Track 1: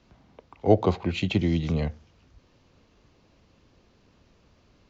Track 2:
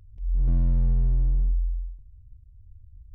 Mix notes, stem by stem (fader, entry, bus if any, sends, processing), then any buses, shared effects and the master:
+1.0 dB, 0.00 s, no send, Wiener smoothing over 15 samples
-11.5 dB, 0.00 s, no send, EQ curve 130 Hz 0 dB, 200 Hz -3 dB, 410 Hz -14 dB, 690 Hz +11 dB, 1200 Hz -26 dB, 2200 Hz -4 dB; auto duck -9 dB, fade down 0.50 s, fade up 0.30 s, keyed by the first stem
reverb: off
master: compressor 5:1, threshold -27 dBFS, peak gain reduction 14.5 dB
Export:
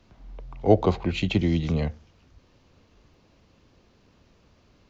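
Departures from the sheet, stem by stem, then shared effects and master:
stem 1: missing Wiener smoothing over 15 samples; master: missing compressor 5:1, threshold -27 dBFS, peak gain reduction 14.5 dB

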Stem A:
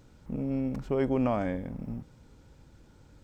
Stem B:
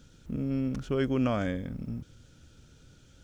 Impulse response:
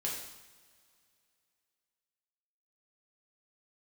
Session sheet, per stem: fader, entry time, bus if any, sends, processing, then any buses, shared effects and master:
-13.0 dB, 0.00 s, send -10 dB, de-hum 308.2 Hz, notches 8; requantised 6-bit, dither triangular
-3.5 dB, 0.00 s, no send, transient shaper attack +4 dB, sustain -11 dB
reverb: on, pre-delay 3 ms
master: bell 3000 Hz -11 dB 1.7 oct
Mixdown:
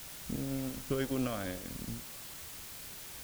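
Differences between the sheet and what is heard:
stem B: polarity flipped; master: missing bell 3000 Hz -11 dB 1.7 oct

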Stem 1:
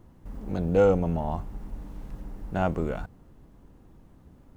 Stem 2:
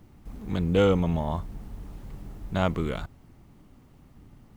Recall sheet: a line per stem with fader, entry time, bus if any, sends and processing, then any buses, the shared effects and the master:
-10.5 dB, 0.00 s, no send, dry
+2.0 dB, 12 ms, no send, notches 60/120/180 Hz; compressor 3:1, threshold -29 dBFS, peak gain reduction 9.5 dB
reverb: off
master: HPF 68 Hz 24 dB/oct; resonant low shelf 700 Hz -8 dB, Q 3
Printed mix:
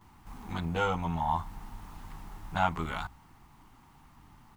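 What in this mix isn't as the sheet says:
stem 1 -10.5 dB -> -3.0 dB; master: missing HPF 68 Hz 24 dB/oct

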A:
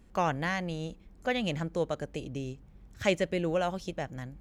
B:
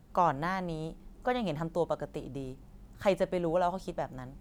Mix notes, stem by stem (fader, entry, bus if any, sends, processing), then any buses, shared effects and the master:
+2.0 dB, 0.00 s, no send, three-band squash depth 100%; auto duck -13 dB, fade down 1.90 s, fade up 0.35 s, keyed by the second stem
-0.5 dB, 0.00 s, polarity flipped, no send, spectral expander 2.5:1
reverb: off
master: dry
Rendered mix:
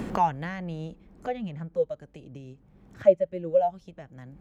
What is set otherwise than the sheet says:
stem B -0.5 dB -> +8.5 dB; master: extra high shelf 2600 Hz -11 dB

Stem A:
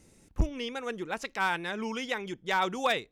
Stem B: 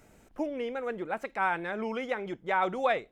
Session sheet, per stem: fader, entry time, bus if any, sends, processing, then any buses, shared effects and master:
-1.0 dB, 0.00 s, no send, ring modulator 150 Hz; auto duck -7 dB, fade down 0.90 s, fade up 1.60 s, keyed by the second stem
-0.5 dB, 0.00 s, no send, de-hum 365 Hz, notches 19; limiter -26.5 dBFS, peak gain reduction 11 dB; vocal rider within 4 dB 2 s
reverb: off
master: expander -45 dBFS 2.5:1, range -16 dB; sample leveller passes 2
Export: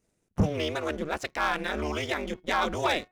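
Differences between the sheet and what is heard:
stem A -1.0 dB -> +5.0 dB; stem B -0.5 dB -> -8.0 dB

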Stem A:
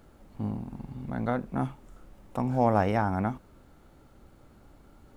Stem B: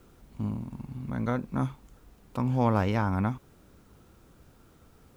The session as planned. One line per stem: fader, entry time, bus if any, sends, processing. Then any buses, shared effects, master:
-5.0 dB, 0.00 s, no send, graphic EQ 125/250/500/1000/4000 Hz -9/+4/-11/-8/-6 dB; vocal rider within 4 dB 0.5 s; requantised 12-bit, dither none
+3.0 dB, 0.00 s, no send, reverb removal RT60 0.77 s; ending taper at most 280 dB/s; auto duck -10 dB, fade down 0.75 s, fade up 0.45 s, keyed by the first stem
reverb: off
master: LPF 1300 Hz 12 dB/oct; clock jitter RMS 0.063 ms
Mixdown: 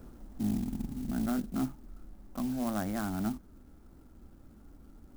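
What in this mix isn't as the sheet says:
stem A -5.0 dB -> +4.0 dB; stem B: polarity flipped

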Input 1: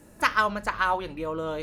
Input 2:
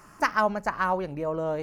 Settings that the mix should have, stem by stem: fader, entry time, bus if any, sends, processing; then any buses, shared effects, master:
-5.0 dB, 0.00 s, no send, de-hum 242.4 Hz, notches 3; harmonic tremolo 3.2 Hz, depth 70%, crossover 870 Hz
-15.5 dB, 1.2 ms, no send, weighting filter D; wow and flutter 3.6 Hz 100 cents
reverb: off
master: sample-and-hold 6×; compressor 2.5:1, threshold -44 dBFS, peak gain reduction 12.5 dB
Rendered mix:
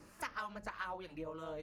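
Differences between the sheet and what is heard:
stem 2: polarity flipped; master: missing sample-and-hold 6×

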